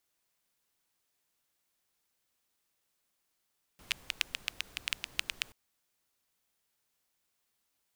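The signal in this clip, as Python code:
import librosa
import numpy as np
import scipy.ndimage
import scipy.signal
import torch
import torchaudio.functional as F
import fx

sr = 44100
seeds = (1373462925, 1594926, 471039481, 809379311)

y = fx.rain(sr, seeds[0], length_s=1.73, drops_per_s=7.9, hz=2700.0, bed_db=-16.5)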